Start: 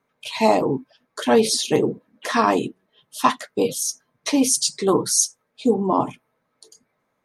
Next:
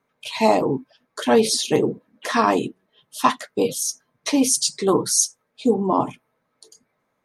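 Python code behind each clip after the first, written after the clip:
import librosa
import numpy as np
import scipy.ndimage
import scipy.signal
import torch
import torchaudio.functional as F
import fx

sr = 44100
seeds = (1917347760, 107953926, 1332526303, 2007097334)

y = x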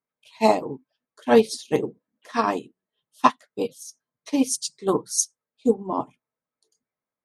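y = fx.upward_expand(x, sr, threshold_db=-27.0, expansion=2.5)
y = F.gain(torch.from_numpy(y), 2.0).numpy()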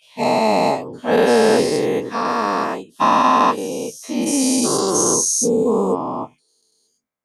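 y = fx.spec_dilate(x, sr, span_ms=480)
y = F.gain(torch.from_numpy(y), -3.5).numpy()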